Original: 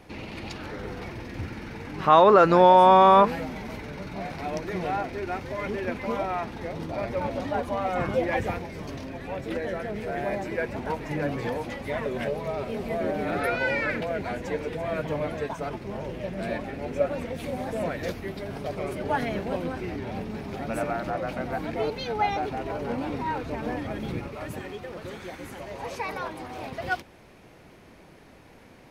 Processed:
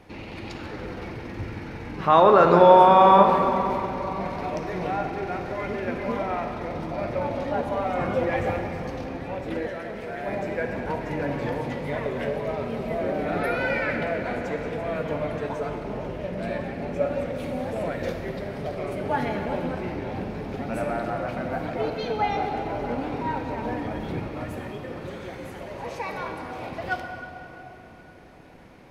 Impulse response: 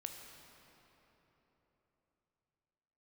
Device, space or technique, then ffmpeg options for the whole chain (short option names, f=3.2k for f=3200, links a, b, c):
swimming-pool hall: -filter_complex "[1:a]atrim=start_sample=2205[a];[0:a][a]afir=irnorm=-1:irlink=0,highshelf=f=4.6k:g=-5.5,asettb=1/sr,asplit=3[b][c][d];[b]atrim=end=9.674[e];[c]atrim=start=9.67:end=10.28,asetpts=PTS-STARTPTS,afade=t=in:d=0.004:c=qsin,afade=t=out:st=0.606:d=0.004:c=qsin,lowshelf=f=500:g=-7[f];[d]atrim=start=10.276[g];[e][f]acrossfade=d=0.004:c1=hsin:c2=qsin[h];[h][g]acrossfade=d=0.004:c1=qsin:c2=hsin,volume=4dB"